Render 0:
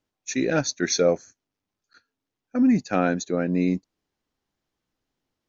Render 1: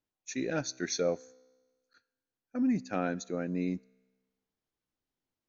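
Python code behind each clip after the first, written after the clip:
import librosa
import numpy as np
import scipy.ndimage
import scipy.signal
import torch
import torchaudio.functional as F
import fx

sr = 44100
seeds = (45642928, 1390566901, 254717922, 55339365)

y = fx.comb_fb(x, sr, f0_hz=64.0, decay_s=1.3, harmonics='all', damping=0.0, mix_pct=30)
y = F.gain(torch.from_numpy(y), -7.0).numpy()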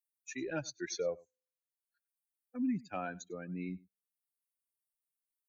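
y = fx.bin_expand(x, sr, power=2.0)
y = y + 10.0 ** (-24.0 / 20.0) * np.pad(y, (int(98 * sr / 1000.0), 0))[:len(y)]
y = fx.band_squash(y, sr, depth_pct=40)
y = F.gain(torch.from_numpy(y), -1.5).numpy()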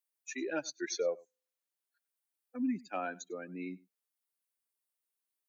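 y = scipy.signal.sosfilt(scipy.signal.butter(4, 240.0, 'highpass', fs=sr, output='sos'), x)
y = F.gain(torch.from_numpy(y), 2.5).numpy()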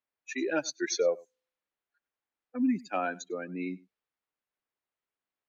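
y = fx.env_lowpass(x, sr, base_hz=2200.0, full_db=-33.0)
y = F.gain(torch.from_numpy(y), 6.0).numpy()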